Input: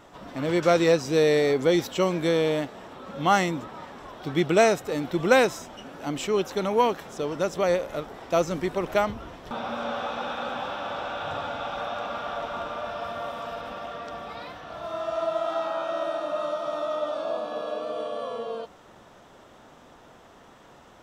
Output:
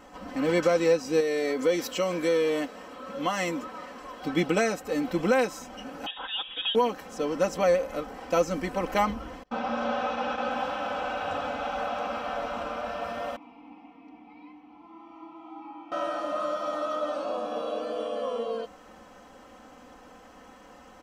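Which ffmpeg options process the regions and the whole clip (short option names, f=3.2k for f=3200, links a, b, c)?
-filter_complex "[0:a]asettb=1/sr,asplit=3[a][b][c];[a]atrim=end=1.204[d];[b]atrim=start=1.2:end=4.23,asetpts=PTS-STARTPTS,afade=t=in:d=0.004:c=qsin,afade=t=out:st=3.026:d=0.004:c=qsin,bass=f=250:g=-7,treble=f=4k:g=1,acompressor=threshold=-23dB:ratio=2.5:attack=3.2:release=140:knee=1:detection=peak,bandreject=f=800:w=8.1[e];[c]atrim=start=4.226[f];[d][e]acrossfade=d=0.004:c1=hsin:c2=qsin[g];[g][f]acrossfade=d=0.004:c1=qsin:c2=hsin,asettb=1/sr,asplit=3[h][i][j];[h]atrim=end=6.064[k];[i]atrim=start=6.06:end=6.75,asetpts=PTS-STARTPTS,afade=t=in:d=0.004:c=qsin,afade=t=out:st=0.686:d=0.004:c=qsin,highpass=92,equalizer=f=1.7k:w=4:g=-13,lowpass=f=3.3k:t=q:w=0.5098,lowpass=f=3.3k:t=q:w=0.6013,lowpass=f=3.3k:t=q:w=0.9,lowpass=f=3.3k:t=q:w=2.563,afreqshift=-3900[l];[j]atrim=start=6.746[m];[k][l]acrossfade=d=0.004:c1=hsin:c2=qsin[n];[n][m]acrossfade=d=0.004:c1=qsin:c2=hsin,asettb=1/sr,asplit=3[o][p][q];[o]atrim=end=9.434[r];[p]atrim=start=9.43:end=10.51,asetpts=PTS-STARTPTS,afade=t=in:d=0.004:c=qsin,afade=t=out:st=1.076:d=0.004:c=qsin,lowpass=f=7.1k:w=0.5412,lowpass=f=7.1k:w=1.3066,agate=range=-29dB:threshold=-35dB:ratio=16:release=100:detection=peak[s];[q]atrim=start=10.506[t];[r][s]acrossfade=d=0.004:c1=hsin:c2=qsin[u];[u][t]acrossfade=d=0.004:c1=qsin:c2=hsin,asettb=1/sr,asplit=3[v][w][x];[v]atrim=end=13.364[y];[w]atrim=start=13.36:end=15.92,asetpts=PTS-STARTPTS,afade=t=in:d=0.004:c=qsin,afade=t=out:st=2.556:d=0.004:c=qsin,asplit=3[z][aa][ab];[z]bandpass=f=300:t=q:w=8,volume=0dB[ac];[aa]bandpass=f=870:t=q:w=8,volume=-6dB[ad];[ab]bandpass=f=2.24k:t=q:w=8,volume=-9dB[ae];[ac][ad][ae]amix=inputs=3:normalize=0,lowshelf=f=160:g=7[af];[x]atrim=start=15.916[ag];[y][af]acrossfade=d=0.004:c1=hsin:c2=qsin[ah];[ah][ag]acrossfade=d=0.004:c1=qsin:c2=hsin,bandreject=f=3.6k:w=7.2,aecho=1:1:3.9:0.8,alimiter=limit=-12dB:level=0:latency=1:release=489,volume=-1dB"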